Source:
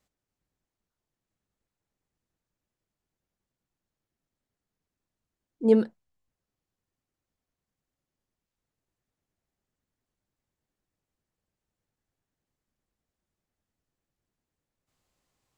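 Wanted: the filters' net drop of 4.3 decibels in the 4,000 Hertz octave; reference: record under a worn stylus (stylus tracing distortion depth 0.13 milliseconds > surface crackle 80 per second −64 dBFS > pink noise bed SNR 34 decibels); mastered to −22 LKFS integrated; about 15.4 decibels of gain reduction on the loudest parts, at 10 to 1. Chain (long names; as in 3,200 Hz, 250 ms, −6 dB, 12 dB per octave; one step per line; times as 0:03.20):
parametric band 4,000 Hz −6 dB
downward compressor 10 to 1, threshold −30 dBFS
stylus tracing distortion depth 0.13 ms
surface crackle 80 per second −64 dBFS
pink noise bed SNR 34 dB
level +15.5 dB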